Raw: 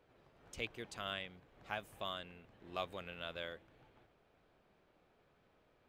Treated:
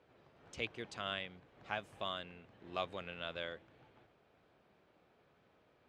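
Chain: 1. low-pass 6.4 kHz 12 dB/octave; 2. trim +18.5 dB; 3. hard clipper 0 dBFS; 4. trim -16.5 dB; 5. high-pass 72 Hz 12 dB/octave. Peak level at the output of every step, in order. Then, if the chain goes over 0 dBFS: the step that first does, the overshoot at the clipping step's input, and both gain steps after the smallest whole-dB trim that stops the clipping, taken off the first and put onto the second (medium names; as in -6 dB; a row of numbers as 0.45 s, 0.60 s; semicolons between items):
-23.0 dBFS, -4.5 dBFS, -4.5 dBFS, -21.0 dBFS, -21.0 dBFS; nothing clips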